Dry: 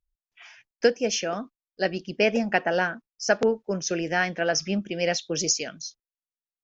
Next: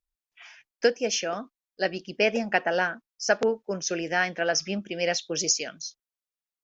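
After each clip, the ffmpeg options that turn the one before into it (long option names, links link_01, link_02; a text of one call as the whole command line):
ffmpeg -i in.wav -af "lowshelf=frequency=240:gain=-8" out.wav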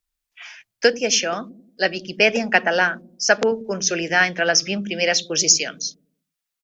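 ffmpeg -i in.wav -filter_complex "[0:a]acrossover=split=320|1200[link_01][link_02][link_03];[link_01]aecho=1:1:89|178|267|356|445|534:0.596|0.274|0.126|0.058|0.0267|0.0123[link_04];[link_03]acontrast=26[link_05];[link_04][link_02][link_05]amix=inputs=3:normalize=0,volume=4.5dB" out.wav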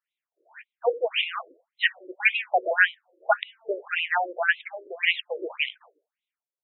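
ffmpeg -i in.wav -af "aeval=exprs='if(lt(val(0),0),0.708*val(0),val(0))':channel_layout=same,equalizer=frequency=180:width=0.33:gain=-8,afftfilt=real='re*between(b*sr/1024,420*pow(2900/420,0.5+0.5*sin(2*PI*1.8*pts/sr))/1.41,420*pow(2900/420,0.5+0.5*sin(2*PI*1.8*pts/sr))*1.41)':imag='im*between(b*sr/1024,420*pow(2900/420,0.5+0.5*sin(2*PI*1.8*pts/sr))/1.41,420*pow(2900/420,0.5+0.5*sin(2*PI*1.8*pts/sr))*1.41)':win_size=1024:overlap=0.75,volume=5dB" out.wav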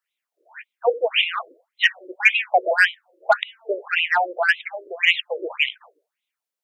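ffmpeg -i in.wav -filter_complex "[0:a]highpass=frequency=410:poles=1,acrossover=split=520|870|1900[link_01][link_02][link_03][link_04];[link_03]asoftclip=type=tanh:threshold=-23.5dB[link_05];[link_01][link_02][link_05][link_04]amix=inputs=4:normalize=0,volume=6.5dB" out.wav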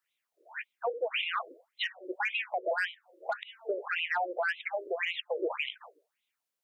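ffmpeg -i in.wav -af "acompressor=threshold=-25dB:ratio=5,alimiter=limit=-22.5dB:level=0:latency=1:release=74" out.wav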